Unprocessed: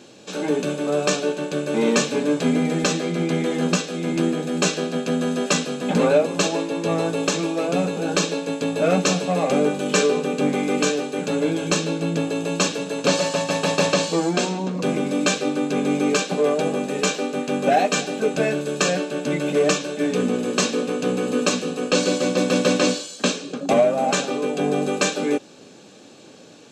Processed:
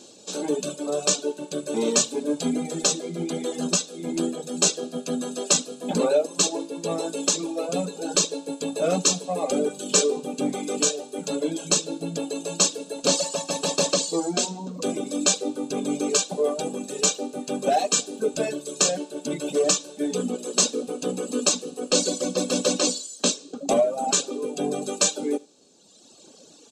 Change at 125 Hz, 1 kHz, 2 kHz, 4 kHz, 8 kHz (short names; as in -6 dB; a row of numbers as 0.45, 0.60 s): -9.0, -5.5, -10.0, 0.0, +5.0 dB